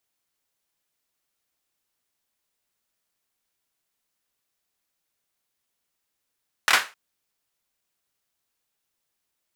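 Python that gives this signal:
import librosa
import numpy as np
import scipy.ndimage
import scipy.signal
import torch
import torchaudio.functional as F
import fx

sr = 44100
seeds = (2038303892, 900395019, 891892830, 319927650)

y = fx.drum_clap(sr, seeds[0], length_s=0.26, bursts=3, spacing_ms=26, hz=1600.0, decay_s=0.28)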